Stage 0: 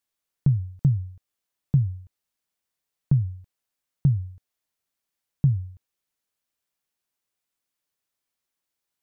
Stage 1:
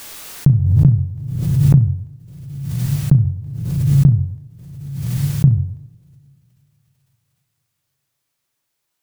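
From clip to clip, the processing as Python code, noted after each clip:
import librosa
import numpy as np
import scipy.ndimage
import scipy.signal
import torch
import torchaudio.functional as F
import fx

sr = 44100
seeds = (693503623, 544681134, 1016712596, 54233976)

y = fx.room_flutter(x, sr, wall_m=6.1, rt60_s=0.22)
y = fx.rev_double_slope(y, sr, seeds[0], early_s=0.83, late_s=3.2, knee_db=-21, drr_db=9.0)
y = fx.pre_swell(y, sr, db_per_s=37.0)
y = F.gain(torch.from_numpy(y), 8.5).numpy()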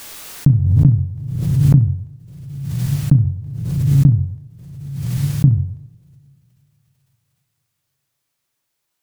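y = fx.doppler_dist(x, sr, depth_ms=0.37)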